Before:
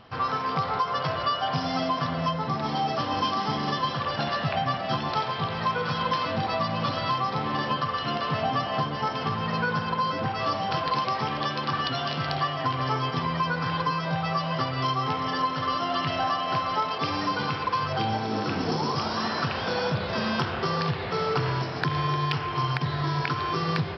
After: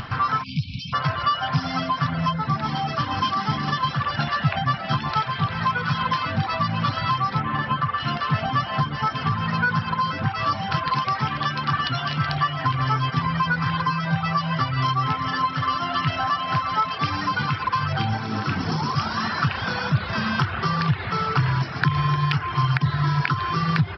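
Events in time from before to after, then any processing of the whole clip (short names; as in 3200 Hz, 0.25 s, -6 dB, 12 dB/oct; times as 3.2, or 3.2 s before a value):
0.43–0.94 spectral delete 270–2200 Hz
7.4–8 LPF 2900 Hz
whole clip: upward compressor, threshold -28 dBFS; reverb removal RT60 0.56 s; EQ curve 140 Hz 0 dB, 490 Hz -15 dB, 1400 Hz -1 dB, 3800 Hz -7 dB; gain +9 dB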